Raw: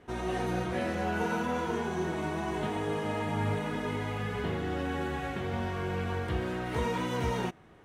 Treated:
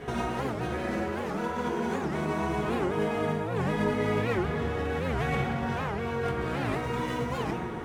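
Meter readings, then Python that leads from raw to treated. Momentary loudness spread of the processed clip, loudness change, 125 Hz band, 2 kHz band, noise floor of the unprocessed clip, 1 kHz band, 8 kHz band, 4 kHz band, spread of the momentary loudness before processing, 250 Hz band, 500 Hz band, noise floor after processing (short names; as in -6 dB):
4 LU, +2.5 dB, +2.0 dB, +2.0 dB, -55 dBFS, +2.5 dB, 0.0 dB, +0.5 dB, 3 LU, +3.0 dB, +3.5 dB, -33 dBFS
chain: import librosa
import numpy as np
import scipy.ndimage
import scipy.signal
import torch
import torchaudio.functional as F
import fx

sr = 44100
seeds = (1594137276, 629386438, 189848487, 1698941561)

y = fx.tracing_dist(x, sr, depth_ms=0.046)
y = fx.over_compress(y, sr, threshold_db=-40.0, ratio=-1.0)
y = fx.hum_notches(y, sr, base_hz=50, count=2)
y = fx.rev_fdn(y, sr, rt60_s=2.6, lf_ratio=1.0, hf_ratio=0.3, size_ms=42.0, drr_db=-3.0)
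y = fx.record_warp(y, sr, rpm=78.0, depth_cents=250.0)
y = F.gain(torch.from_numpy(y), 5.5).numpy()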